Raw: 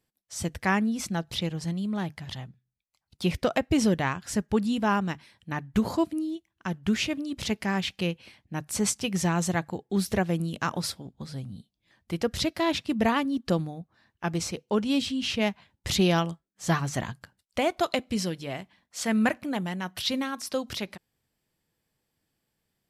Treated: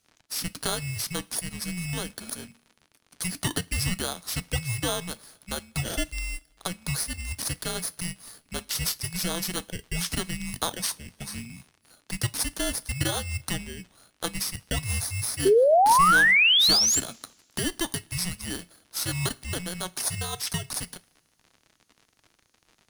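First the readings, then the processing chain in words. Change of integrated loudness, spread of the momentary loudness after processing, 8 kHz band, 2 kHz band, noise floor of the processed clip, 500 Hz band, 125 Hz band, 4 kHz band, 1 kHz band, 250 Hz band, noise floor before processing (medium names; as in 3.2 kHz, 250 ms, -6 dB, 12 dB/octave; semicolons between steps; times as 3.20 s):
+3.0 dB, 19 LU, +8.0 dB, +6.5 dB, -69 dBFS, +1.5 dB, -1.0 dB, +7.0 dB, +4.5 dB, -9.0 dB, -81 dBFS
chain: bit-reversed sample order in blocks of 16 samples; RIAA curve recording; compression 2:1, threshold -24 dBFS, peak gain reduction 11 dB; crackle 71 per s -45 dBFS; frequency shift -360 Hz; short-mantissa float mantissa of 4-bit; painted sound rise, 15.45–17.00 s, 370–7800 Hz -24 dBFS; distance through air 67 m; two-slope reverb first 0.25 s, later 1.7 s, from -21 dB, DRR 15.5 dB; trim +6.5 dB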